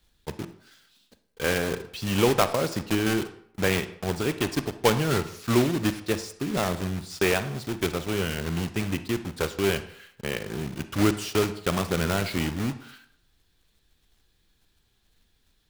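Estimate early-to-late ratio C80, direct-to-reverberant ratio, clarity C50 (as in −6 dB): 15.5 dB, 11.0 dB, 12.5 dB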